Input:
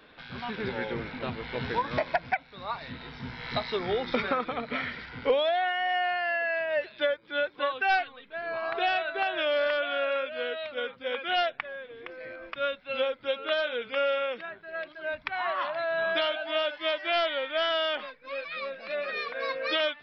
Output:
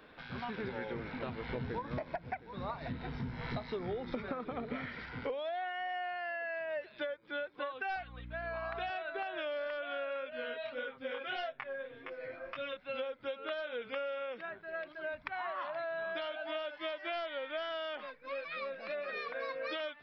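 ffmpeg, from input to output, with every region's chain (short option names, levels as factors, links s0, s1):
-filter_complex "[0:a]asettb=1/sr,asplit=3[s0][s1][s2];[s0]atrim=end=1.494[s3];[s1]atrim=start=1.49:end=4.86,asetpts=PTS-STARTPTS,afade=t=in:d=0.004:c=qsin,afade=t=out:st=3.366:d=0.004:c=qsin,lowshelf=f=470:g=9.5,aecho=1:1:715:0.119,atrim=end_sample=148617[s4];[s2]atrim=start=4.856[s5];[s3][s4]acrossfade=d=0.004:c1=hsin:c2=qsin[s6];[s6][s5]acrossfade=d=0.004:c1=qsin:c2=hsin,asettb=1/sr,asplit=3[s7][s8][s9];[s7]atrim=end=7.964[s10];[s8]atrim=start=7.96:end=8.9,asetpts=PTS-STARTPTS,afade=t=in:d=0.004:c=qsin,afade=t=out:st=0.936:d=0.004:c=qsin,highpass=570,aeval=exprs='val(0)+0.00631*(sin(2*PI*60*n/s)+sin(2*PI*2*60*n/s)/2+sin(2*PI*3*60*n/s)/3+sin(2*PI*4*60*n/s)/4+sin(2*PI*5*60*n/s)/5)':c=same[s11];[s9]atrim=start=8.896[s12];[s10][s11]acrossfade=d=0.004:c1=hsin:c2=qsin[s13];[s13][s12]acrossfade=d=0.004:c1=qsin:c2=hsin,asettb=1/sr,asplit=3[s14][s15][s16];[s14]atrim=end=10.304[s17];[s15]atrim=start=10.3:end=12.77,asetpts=PTS-STARTPTS,afade=t=in:d=0.004:c=qsin,afade=t=out:st=2.466:d=0.004:c=qsin,flanger=delay=18.5:depth=7.7:speed=1.7,aecho=1:1:7.5:0.77,atrim=end_sample=108927[s18];[s16]atrim=start=12.766[s19];[s17][s18]acrossfade=d=0.004:c1=hsin:c2=qsin[s20];[s20][s19]acrossfade=d=0.004:c1=qsin:c2=hsin,equalizer=f=3800:t=o:w=1.6:g=-5.5,acompressor=threshold=0.0178:ratio=6,volume=0.891"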